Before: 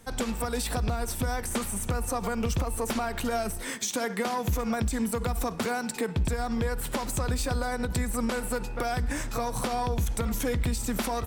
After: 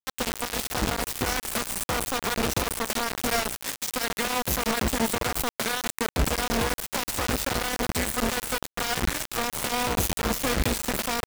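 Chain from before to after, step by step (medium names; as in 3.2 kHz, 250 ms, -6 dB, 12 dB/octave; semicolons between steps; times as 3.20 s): bass shelf 230 Hz -5 dB; de-hum 154.2 Hz, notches 16; peak limiter -26 dBFS, peak gain reduction 6.5 dB; bit crusher 5-bit; trim +6.5 dB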